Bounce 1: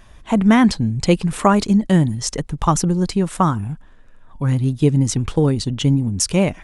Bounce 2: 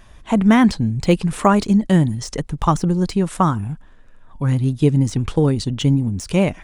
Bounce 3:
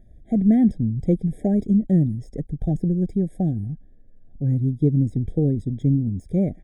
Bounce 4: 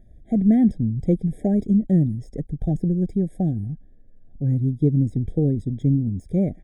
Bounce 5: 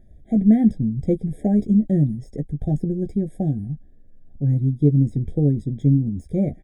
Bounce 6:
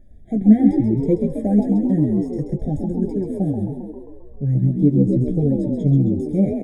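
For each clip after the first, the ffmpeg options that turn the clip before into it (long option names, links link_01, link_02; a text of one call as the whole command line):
ffmpeg -i in.wav -af "deesser=0.5" out.wav
ffmpeg -i in.wav -af "firequalizer=gain_entry='entry(260,0);entry(1200,-20);entry(4600,-25);entry(10000,-15)':delay=0.05:min_phase=1,afftfilt=real='re*eq(mod(floor(b*sr/1024/790),2),0)':imag='im*eq(mod(floor(b*sr/1024/790),2),0)':win_size=1024:overlap=0.75,volume=-3dB" out.wav
ffmpeg -i in.wav -af anull out.wav
ffmpeg -i in.wav -filter_complex "[0:a]asplit=2[link_01][link_02];[link_02]adelay=14,volume=-7dB[link_03];[link_01][link_03]amix=inputs=2:normalize=0" out.wav
ffmpeg -i in.wav -filter_complex "[0:a]asplit=8[link_01][link_02][link_03][link_04][link_05][link_06][link_07][link_08];[link_02]adelay=133,afreqshift=54,volume=-5dB[link_09];[link_03]adelay=266,afreqshift=108,volume=-10.5dB[link_10];[link_04]adelay=399,afreqshift=162,volume=-16dB[link_11];[link_05]adelay=532,afreqshift=216,volume=-21.5dB[link_12];[link_06]adelay=665,afreqshift=270,volume=-27.1dB[link_13];[link_07]adelay=798,afreqshift=324,volume=-32.6dB[link_14];[link_08]adelay=931,afreqshift=378,volume=-38.1dB[link_15];[link_01][link_09][link_10][link_11][link_12][link_13][link_14][link_15]amix=inputs=8:normalize=0,flanger=delay=3.4:depth=7.2:regen=39:speed=0.71:shape=sinusoidal,volume=4.5dB" out.wav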